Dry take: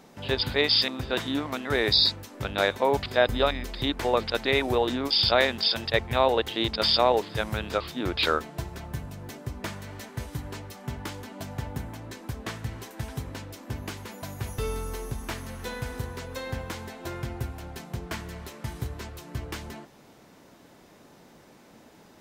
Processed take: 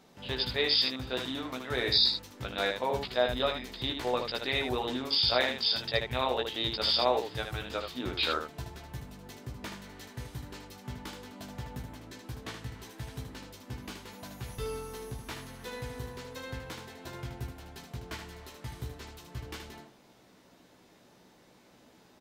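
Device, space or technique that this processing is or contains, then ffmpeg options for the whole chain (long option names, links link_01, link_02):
slapback doubling: -filter_complex "[0:a]equalizer=frequency=3800:width_type=o:width=1.1:gain=4,asplit=3[link_01][link_02][link_03];[link_02]adelay=16,volume=-5dB[link_04];[link_03]adelay=77,volume=-6dB[link_05];[link_01][link_04][link_05]amix=inputs=3:normalize=0,volume=-8.5dB"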